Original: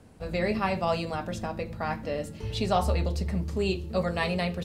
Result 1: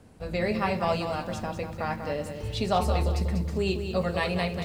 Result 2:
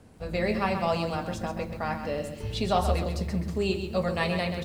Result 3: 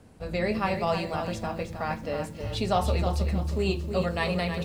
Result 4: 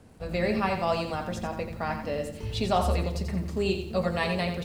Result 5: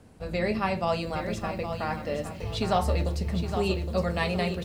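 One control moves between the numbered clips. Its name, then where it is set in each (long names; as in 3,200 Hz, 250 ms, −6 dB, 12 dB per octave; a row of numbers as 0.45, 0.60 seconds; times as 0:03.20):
feedback echo at a low word length, delay time: 193, 131, 315, 87, 815 milliseconds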